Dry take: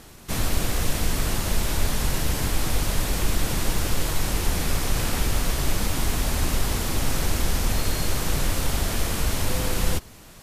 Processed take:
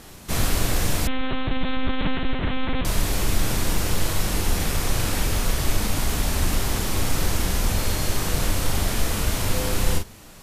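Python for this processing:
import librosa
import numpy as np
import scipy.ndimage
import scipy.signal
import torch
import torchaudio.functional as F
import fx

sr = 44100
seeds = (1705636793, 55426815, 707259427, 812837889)

p1 = fx.rider(x, sr, range_db=3, speed_s=2.0)
p2 = p1 + fx.room_early_taps(p1, sr, ms=(33, 43), db=(-8.0, -7.0), dry=0)
y = fx.lpc_monotone(p2, sr, seeds[0], pitch_hz=260.0, order=8, at=(1.07, 2.85))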